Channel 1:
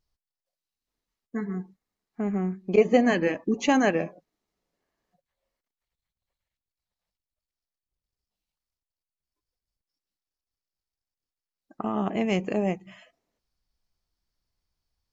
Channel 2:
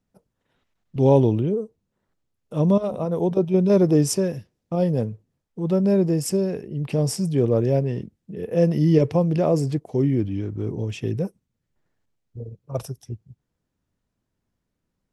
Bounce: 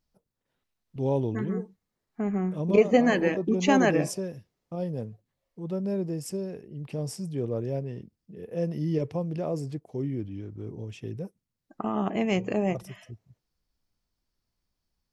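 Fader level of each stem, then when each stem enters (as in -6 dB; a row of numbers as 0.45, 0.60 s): -0.5, -10.5 dB; 0.00, 0.00 s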